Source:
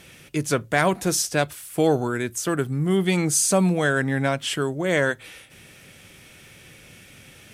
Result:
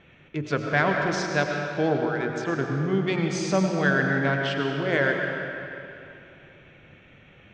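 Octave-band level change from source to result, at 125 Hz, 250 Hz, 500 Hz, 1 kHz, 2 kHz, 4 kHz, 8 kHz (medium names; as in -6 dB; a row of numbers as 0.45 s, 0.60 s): -2.0 dB, -2.5 dB, -2.0 dB, -1.0 dB, +1.5 dB, -4.5 dB, -15.5 dB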